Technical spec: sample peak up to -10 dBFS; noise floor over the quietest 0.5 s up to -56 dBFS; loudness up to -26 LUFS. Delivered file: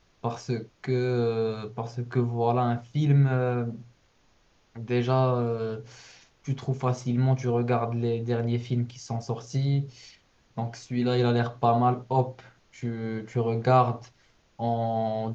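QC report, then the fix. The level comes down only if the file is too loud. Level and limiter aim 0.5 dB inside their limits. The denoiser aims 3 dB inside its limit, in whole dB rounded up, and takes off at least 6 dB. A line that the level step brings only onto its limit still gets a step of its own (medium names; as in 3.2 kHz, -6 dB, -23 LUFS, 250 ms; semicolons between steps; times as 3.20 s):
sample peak -8.0 dBFS: fail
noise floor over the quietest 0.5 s -64 dBFS: pass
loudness -27.0 LUFS: pass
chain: peak limiter -10.5 dBFS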